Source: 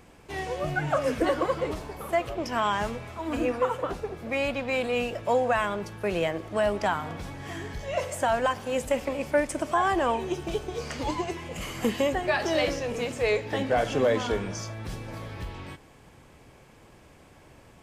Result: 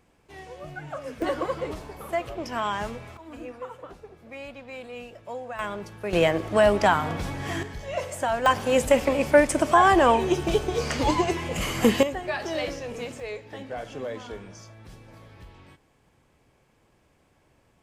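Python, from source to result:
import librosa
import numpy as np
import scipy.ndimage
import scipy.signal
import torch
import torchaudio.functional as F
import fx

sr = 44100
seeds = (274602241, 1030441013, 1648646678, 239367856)

y = fx.gain(x, sr, db=fx.steps((0.0, -10.0), (1.22, -2.0), (3.17, -12.0), (5.59, -3.0), (6.13, 6.5), (7.63, -1.0), (8.46, 7.0), (12.03, -4.0), (13.2, -10.5)))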